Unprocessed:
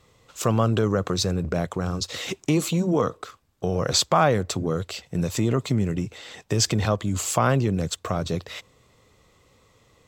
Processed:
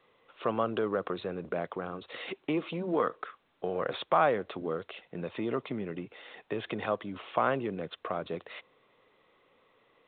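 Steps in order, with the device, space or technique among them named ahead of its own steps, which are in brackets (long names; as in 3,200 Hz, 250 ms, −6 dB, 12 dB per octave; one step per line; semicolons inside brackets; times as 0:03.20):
0:02.82–0:03.84: dynamic equaliser 1,700 Hz, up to +8 dB, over −47 dBFS, Q 2.1
telephone (band-pass filter 310–3,000 Hz; level −5 dB; A-law companding 64 kbit/s 8,000 Hz)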